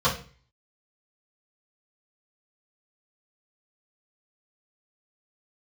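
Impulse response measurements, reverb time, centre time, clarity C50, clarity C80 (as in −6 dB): 0.40 s, 21 ms, 9.5 dB, 15.0 dB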